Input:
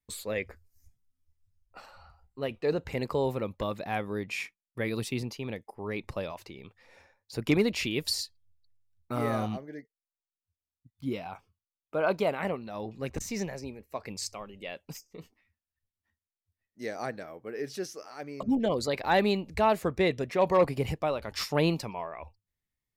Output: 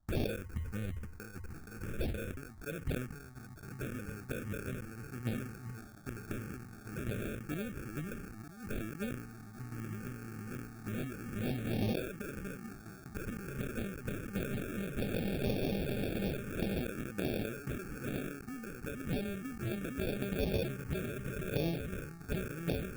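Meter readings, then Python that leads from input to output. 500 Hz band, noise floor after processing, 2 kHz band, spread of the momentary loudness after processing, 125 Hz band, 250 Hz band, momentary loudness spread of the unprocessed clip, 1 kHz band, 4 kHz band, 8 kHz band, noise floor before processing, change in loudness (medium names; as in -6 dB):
-9.5 dB, -51 dBFS, -6.5 dB, 11 LU, -0.5 dB, -4.0 dB, 16 LU, -16.0 dB, -10.5 dB, -8.5 dB, under -85 dBFS, -8.0 dB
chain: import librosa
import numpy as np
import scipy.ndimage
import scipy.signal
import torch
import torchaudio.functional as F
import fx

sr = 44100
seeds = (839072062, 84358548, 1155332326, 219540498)

p1 = x + fx.echo_opening(x, sr, ms=472, hz=200, octaves=2, feedback_pct=70, wet_db=-3, dry=0)
p2 = fx.gate_flip(p1, sr, shuts_db=-22.0, range_db=-27)
p3 = fx.over_compress(p2, sr, threshold_db=-47.0, ratio=-1.0)
p4 = fx.spec_topn(p3, sr, count=64)
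p5 = fx.high_shelf(p4, sr, hz=7700.0, db=10.5)
p6 = fx.sample_hold(p5, sr, seeds[0], rate_hz=1000.0, jitter_pct=0)
p7 = fx.low_shelf(p6, sr, hz=120.0, db=4.5)
p8 = fx.tremolo_random(p7, sr, seeds[1], hz=3.5, depth_pct=75)
p9 = fx.env_phaser(p8, sr, low_hz=430.0, high_hz=1400.0, full_db=-39.5)
p10 = fx.sustainer(p9, sr, db_per_s=57.0)
y = F.gain(torch.from_numpy(p10), 11.0).numpy()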